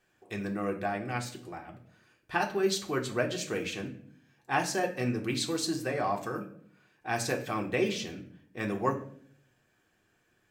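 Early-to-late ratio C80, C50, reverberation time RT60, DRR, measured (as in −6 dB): 15.0 dB, 11.5 dB, 0.60 s, 0.5 dB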